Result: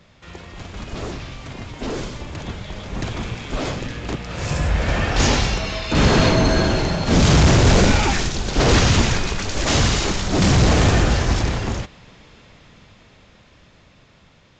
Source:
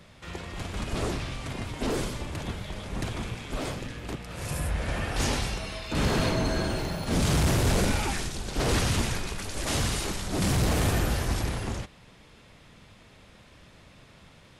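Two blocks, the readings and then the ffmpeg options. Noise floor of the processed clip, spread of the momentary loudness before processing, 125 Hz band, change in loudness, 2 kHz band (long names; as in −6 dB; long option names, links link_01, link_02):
−52 dBFS, 12 LU, +10.0 dB, +10.5 dB, +10.0 dB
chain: -af "dynaudnorm=framelen=740:gausssize=9:maxgain=10.5dB" -ar 16000 -c:a pcm_mulaw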